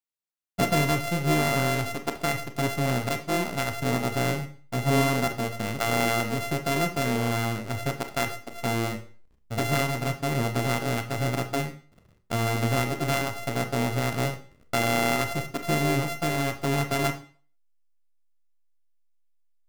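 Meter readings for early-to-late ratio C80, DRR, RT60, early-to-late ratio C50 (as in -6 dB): 16.5 dB, 6.5 dB, 0.40 s, 13.0 dB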